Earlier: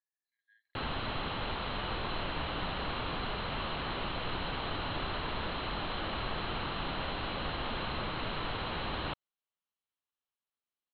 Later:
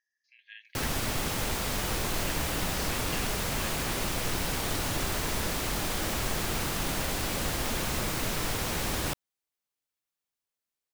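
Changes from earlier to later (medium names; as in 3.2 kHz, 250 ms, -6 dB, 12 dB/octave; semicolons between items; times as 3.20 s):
speech: remove Butterworth band-stop 2.7 kHz, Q 0.56; master: remove rippled Chebyshev low-pass 4.2 kHz, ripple 6 dB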